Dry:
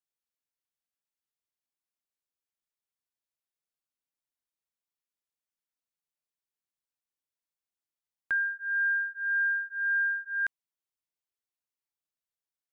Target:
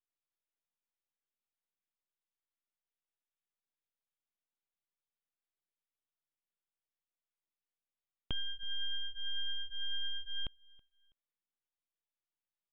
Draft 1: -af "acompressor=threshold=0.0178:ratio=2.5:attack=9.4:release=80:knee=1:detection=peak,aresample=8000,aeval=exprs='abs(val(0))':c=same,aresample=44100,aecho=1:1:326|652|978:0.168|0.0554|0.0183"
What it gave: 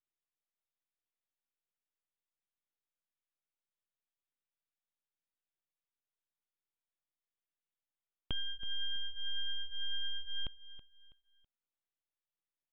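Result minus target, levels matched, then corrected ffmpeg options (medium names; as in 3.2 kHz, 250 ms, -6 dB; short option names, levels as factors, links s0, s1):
echo-to-direct +10.5 dB
-af "acompressor=threshold=0.0178:ratio=2.5:attack=9.4:release=80:knee=1:detection=peak,aresample=8000,aeval=exprs='abs(val(0))':c=same,aresample=44100,aecho=1:1:326|652:0.0501|0.0165"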